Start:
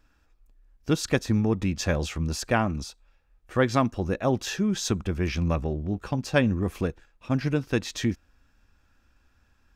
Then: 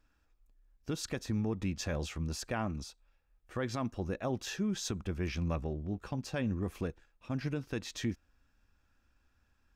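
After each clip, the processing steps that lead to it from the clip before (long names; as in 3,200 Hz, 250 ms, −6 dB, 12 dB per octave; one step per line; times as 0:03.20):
brickwall limiter −16 dBFS, peak gain reduction 8 dB
level −8 dB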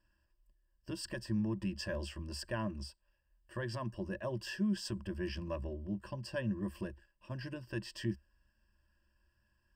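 EQ curve with evenly spaced ripples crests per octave 1.3, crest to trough 17 dB
level −6.5 dB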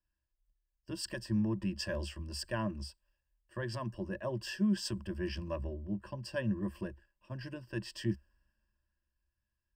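multiband upward and downward expander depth 40%
level +1.5 dB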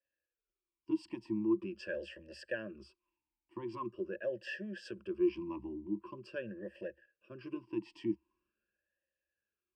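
in parallel at 0 dB: downward compressor, threshold −40 dBFS, peak gain reduction 13.5 dB
on the sum: formant filter swept between two vowels e-u 0.44 Hz
level +6.5 dB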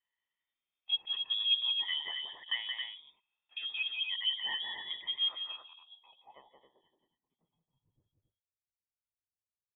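loudspeakers that aren't time-aligned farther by 60 metres −5 dB, 93 metres −6 dB
voice inversion scrambler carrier 3,600 Hz
low-pass filter sweep 2,700 Hz → 100 Hz, 0:05.14–0:08.03
level −2 dB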